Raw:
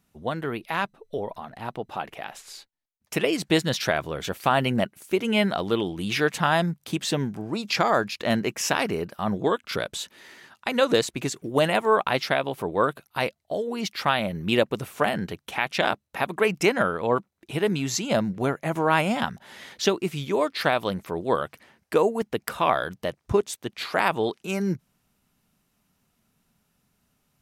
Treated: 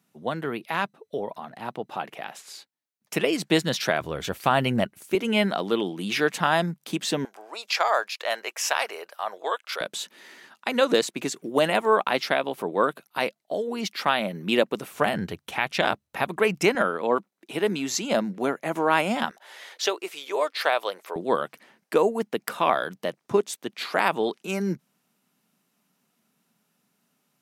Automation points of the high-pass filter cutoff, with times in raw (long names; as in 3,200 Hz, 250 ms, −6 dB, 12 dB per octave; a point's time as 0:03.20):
high-pass filter 24 dB per octave
140 Hz
from 0:04.01 56 Hz
from 0:05.15 170 Hz
from 0:07.25 560 Hz
from 0:09.81 180 Hz
from 0:14.91 58 Hz
from 0:16.75 200 Hz
from 0:19.31 440 Hz
from 0:21.16 170 Hz